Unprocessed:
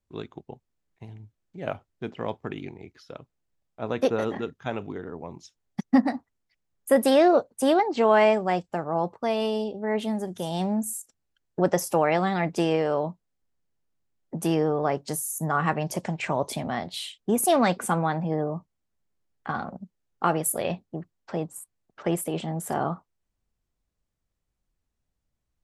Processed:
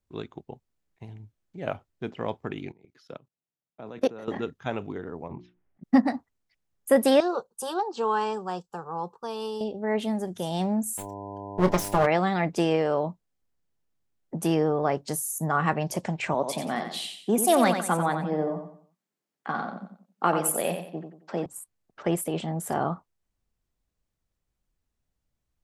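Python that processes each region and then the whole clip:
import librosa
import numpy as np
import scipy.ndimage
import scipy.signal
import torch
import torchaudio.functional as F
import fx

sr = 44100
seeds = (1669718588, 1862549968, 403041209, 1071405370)

y = fx.chain(x, sr, fx.highpass(hz=120.0, slope=24),
    fx.low_shelf(hz=370.0, db=2.5),
    fx.level_steps(step_db=20), at=(2.72, 4.28))
y = fx.chain(y, sr, fx.lowpass(hz=2400.0, slope=24),
    fx.hum_notches(base_hz=60, count=6),
    fx.over_compress(threshold_db=-42.0, ratio=-0.5), at=(5.28, 5.84))
y = fx.chain(y, sr, fx.low_shelf(hz=470.0, db=-9.0),
    fx.fixed_phaser(hz=420.0, stages=8), at=(7.2, 9.61))
y = fx.lower_of_two(y, sr, delay_ms=4.9, at=(10.97, 12.05), fade=0.02)
y = fx.dmg_buzz(y, sr, base_hz=100.0, harmonics=10, level_db=-38.0, tilt_db=-1, odd_only=False, at=(10.97, 12.05), fade=0.02)
y = fx.doubler(y, sr, ms=27.0, db=-11.0, at=(10.97, 12.05), fade=0.02)
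y = fx.chain(y, sr, fx.highpass(hz=170.0, slope=24),
    fx.echo_feedback(ms=90, feedback_pct=34, wet_db=-7.5), at=(16.34, 21.46))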